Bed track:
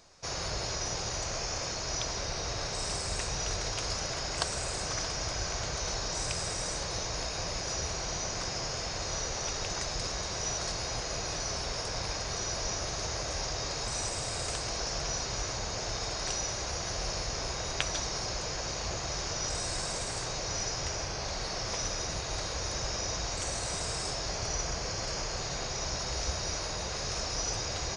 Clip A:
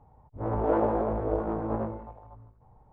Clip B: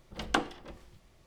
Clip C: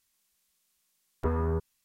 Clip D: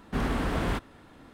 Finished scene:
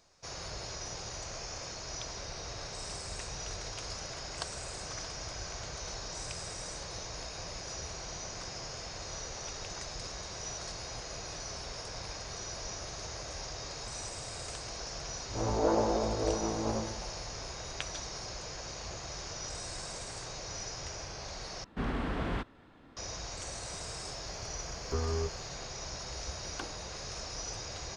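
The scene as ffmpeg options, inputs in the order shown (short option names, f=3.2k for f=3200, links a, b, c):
-filter_complex "[0:a]volume=-7dB[a];[4:a]lowpass=5.3k[b];[3:a]asplit=2[c][d];[d]adelay=15,volume=-2.5dB[e];[c][e]amix=inputs=2:normalize=0[f];[a]asplit=2[g][h];[g]atrim=end=21.644[i];[b]atrim=end=1.33,asetpts=PTS-STARTPTS,volume=-5.5dB[j];[h]atrim=start=22.966[k];[1:a]atrim=end=2.92,asetpts=PTS-STARTPTS,volume=-3dB,afade=t=in:d=0.004:c=hsin,afade=t=out:st=2.916:d=0.004:c=hsin,adelay=14950[l];[f]atrim=end=1.84,asetpts=PTS-STARTPTS,volume=-7dB,afade=t=in:d=0.004:c=hsin,afade=t=out:st=1.836:d=0.004:c=hsin,adelay=23680[m];[2:a]atrim=end=1.26,asetpts=PTS-STARTPTS,volume=-15dB,afade=t=in:d=0.004:c=hsin,afade=t=out:st=1.256:d=0.004:c=hsin,adelay=26250[n];[i][j]acrossfade=d=0.004:c1=hsin:c2=hsin[o];[o][k]acrossfade=d=0.004:c1=hsin:c2=hsin[p];[p][l][m][n]amix=inputs=4:normalize=0"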